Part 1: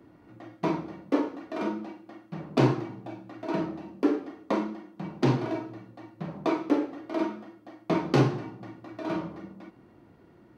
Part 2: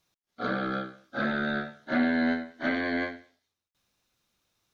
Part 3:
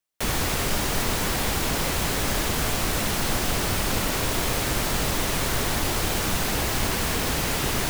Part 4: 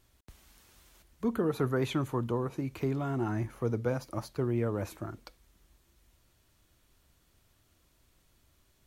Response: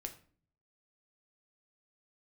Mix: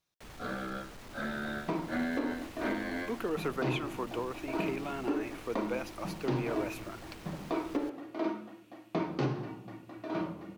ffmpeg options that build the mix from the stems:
-filter_complex "[0:a]lowpass=6k,adelay=1050,volume=-3.5dB[a];[1:a]volume=-8dB[b];[2:a]asoftclip=type=tanh:threshold=-24dB,highshelf=f=6k:g=-9.5,volume=-19.5dB[c];[3:a]highpass=340,equalizer=f=2.6k:t=o:w=0.57:g=14.5,adelay=1850,volume=-2dB[d];[a][b][c][d]amix=inputs=4:normalize=0,alimiter=limit=-21.5dB:level=0:latency=1:release=208"

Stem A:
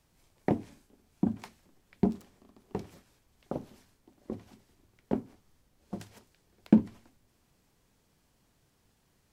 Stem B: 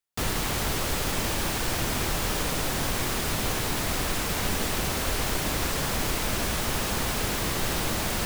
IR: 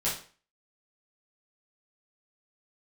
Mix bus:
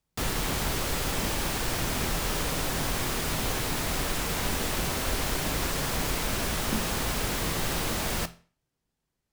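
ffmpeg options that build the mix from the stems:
-filter_complex "[0:a]volume=-14.5dB,asplit=2[a][b];[b]volume=-14.5dB[c];[1:a]volume=-2.5dB,asplit=2[d][e];[e]volume=-19dB[f];[2:a]atrim=start_sample=2205[g];[c][f]amix=inputs=2:normalize=0[h];[h][g]afir=irnorm=-1:irlink=0[i];[a][d][i]amix=inputs=3:normalize=0"

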